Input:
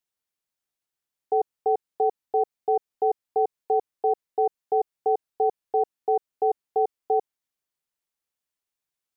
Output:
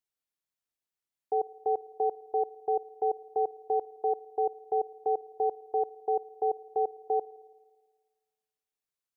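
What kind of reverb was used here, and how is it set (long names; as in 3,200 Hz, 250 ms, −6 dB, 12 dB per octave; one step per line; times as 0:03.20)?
spring reverb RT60 1.5 s, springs 55 ms, DRR 20 dB
level −5.5 dB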